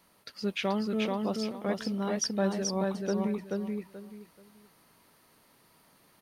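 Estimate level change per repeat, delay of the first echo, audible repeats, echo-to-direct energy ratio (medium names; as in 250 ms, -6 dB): -12.5 dB, 432 ms, 3, -2.5 dB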